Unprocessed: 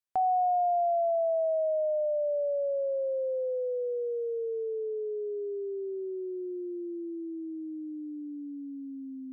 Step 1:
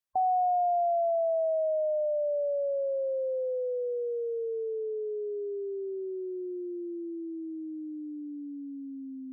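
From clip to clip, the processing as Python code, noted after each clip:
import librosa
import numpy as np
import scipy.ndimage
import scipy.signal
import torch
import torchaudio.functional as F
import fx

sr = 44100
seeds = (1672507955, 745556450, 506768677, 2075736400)

y = fx.spec_gate(x, sr, threshold_db=-25, keep='strong')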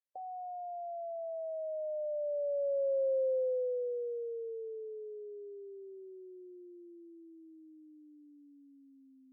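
y = fx.vowel_filter(x, sr, vowel='e')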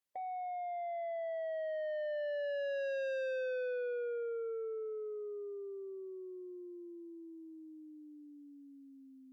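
y = 10.0 ** (-39.5 / 20.0) * np.tanh(x / 10.0 ** (-39.5 / 20.0))
y = y * librosa.db_to_amplitude(4.0)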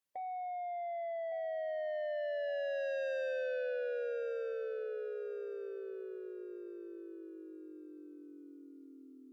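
y = fx.echo_feedback(x, sr, ms=1161, feedback_pct=33, wet_db=-10)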